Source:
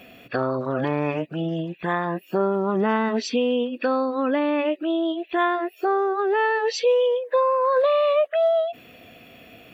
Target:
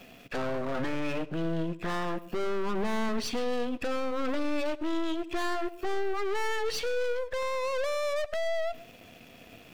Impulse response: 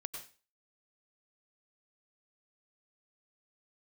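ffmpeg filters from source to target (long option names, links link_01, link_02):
-filter_complex "[0:a]aeval=exprs='(tanh(35.5*val(0)+0.5)-tanh(0.5))/35.5':channel_layout=same,aeval=exprs='sgn(val(0))*max(abs(val(0))-0.00188,0)':channel_layout=same,asplit=2[link_01][link_02];[1:a]atrim=start_sample=2205,lowshelf=frequency=420:gain=11.5[link_03];[link_02][link_03]afir=irnorm=-1:irlink=0,volume=-12dB[link_04];[link_01][link_04]amix=inputs=2:normalize=0"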